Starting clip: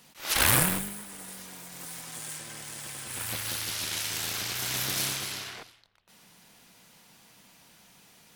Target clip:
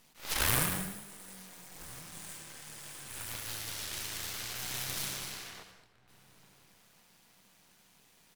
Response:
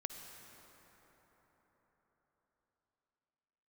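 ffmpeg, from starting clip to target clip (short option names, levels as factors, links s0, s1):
-filter_complex "[0:a]aeval=exprs='max(val(0),0)':c=same,asplit=2[s0][s1];[s1]adelay=1399,volume=0.1,highshelf=f=4000:g=-31.5[s2];[s0][s2]amix=inputs=2:normalize=0[s3];[1:a]atrim=start_sample=2205,afade=t=out:st=0.29:d=0.01,atrim=end_sample=13230[s4];[s3][s4]afir=irnorm=-1:irlink=0"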